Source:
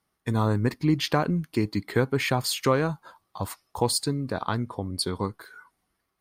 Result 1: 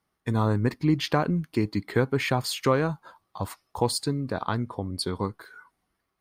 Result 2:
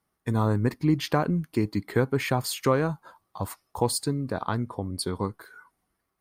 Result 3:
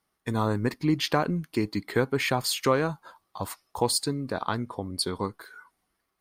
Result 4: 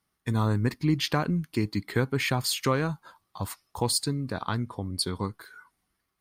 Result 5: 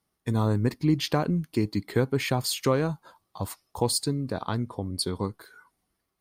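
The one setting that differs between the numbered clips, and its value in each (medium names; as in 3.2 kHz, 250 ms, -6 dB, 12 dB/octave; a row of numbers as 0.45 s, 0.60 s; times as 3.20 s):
peaking EQ, frequency: 15 kHz, 3.8 kHz, 100 Hz, 570 Hz, 1.5 kHz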